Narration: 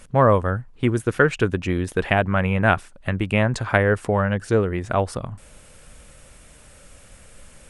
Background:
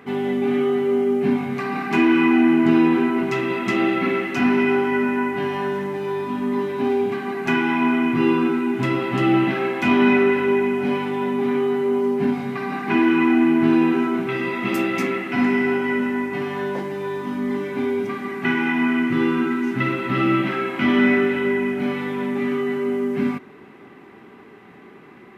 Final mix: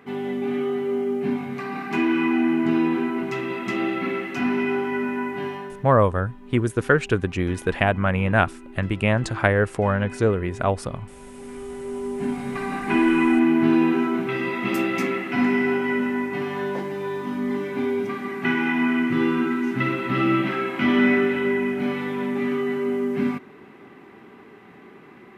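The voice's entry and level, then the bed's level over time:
5.70 s, -1.0 dB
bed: 5.48 s -5 dB
5.97 s -21.5 dB
11.19 s -21.5 dB
12.55 s -1.5 dB

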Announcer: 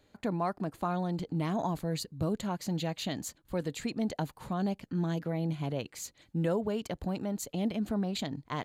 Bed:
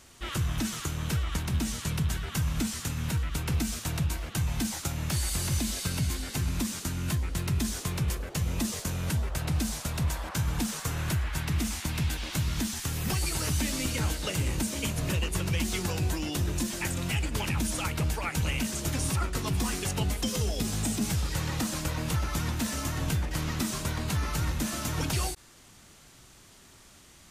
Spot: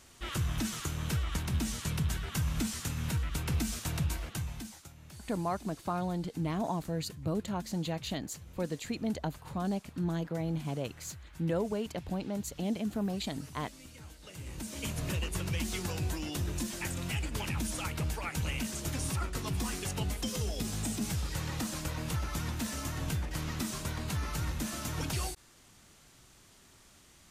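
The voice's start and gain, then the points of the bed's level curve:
5.05 s, -1.5 dB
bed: 4.23 s -3 dB
4.95 s -21 dB
14.15 s -21 dB
14.90 s -5 dB

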